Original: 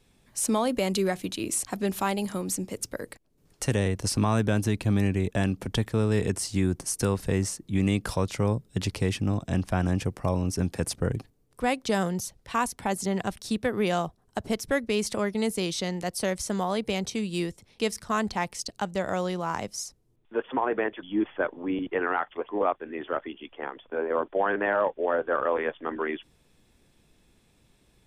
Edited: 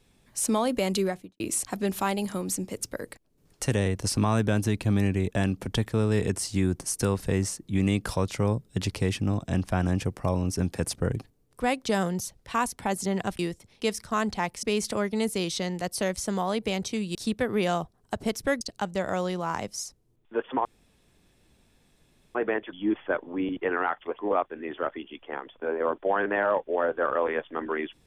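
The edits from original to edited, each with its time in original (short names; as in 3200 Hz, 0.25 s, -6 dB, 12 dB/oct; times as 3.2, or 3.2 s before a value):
0.97–1.4 studio fade out
13.39–14.85 swap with 17.37–18.61
20.65 insert room tone 1.70 s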